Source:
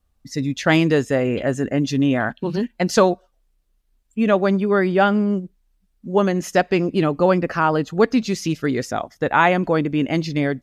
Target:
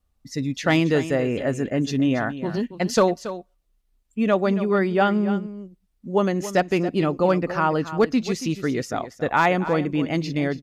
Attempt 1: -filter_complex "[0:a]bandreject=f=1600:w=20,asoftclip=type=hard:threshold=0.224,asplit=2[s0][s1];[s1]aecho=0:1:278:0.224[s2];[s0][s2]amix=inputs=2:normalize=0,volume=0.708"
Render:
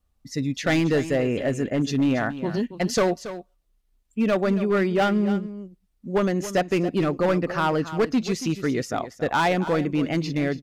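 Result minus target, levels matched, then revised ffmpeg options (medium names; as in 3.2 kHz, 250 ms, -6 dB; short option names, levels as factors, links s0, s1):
hard clipper: distortion +18 dB
-filter_complex "[0:a]bandreject=f=1600:w=20,asoftclip=type=hard:threshold=0.531,asplit=2[s0][s1];[s1]aecho=0:1:278:0.224[s2];[s0][s2]amix=inputs=2:normalize=0,volume=0.708"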